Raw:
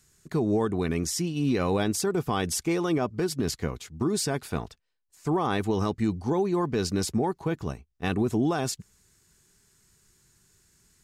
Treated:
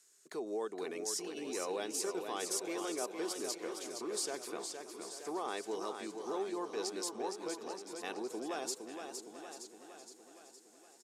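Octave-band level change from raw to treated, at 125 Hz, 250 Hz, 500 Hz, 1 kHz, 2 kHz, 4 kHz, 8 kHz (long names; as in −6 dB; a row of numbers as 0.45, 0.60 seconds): −34.0, −16.5, −10.0, −10.0, −10.0, −7.0, −5.0 decibels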